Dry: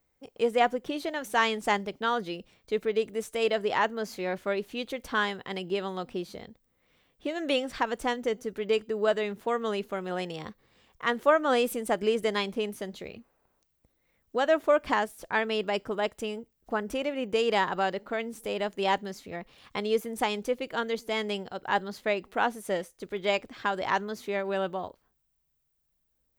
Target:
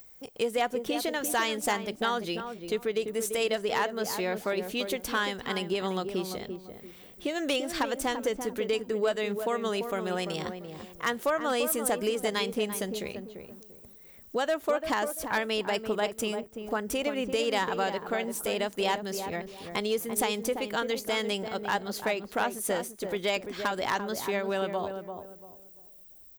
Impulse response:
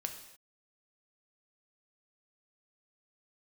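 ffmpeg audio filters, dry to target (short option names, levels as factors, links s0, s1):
-filter_complex "[0:a]acompressor=threshold=0.0282:ratio=2.5,asoftclip=type=hard:threshold=0.075,crystalizer=i=2:c=0,acompressor=mode=upward:threshold=0.00501:ratio=2.5,asplit=2[s0][s1];[s1]adelay=342,lowpass=f=910:p=1,volume=0.501,asplit=2[s2][s3];[s3]adelay=342,lowpass=f=910:p=1,volume=0.32,asplit=2[s4][s5];[s5]adelay=342,lowpass=f=910:p=1,volume=0.32,asplit=2[s6][s7];[s7]adelay=342,lowpass=f=910:p=1,volume=0.32[s8];[s2][s4][s6][s8]amix=inputs=4:normalize=0[s9];[s0][s9]amix=inputs=2:normalize=0,volume=1.41"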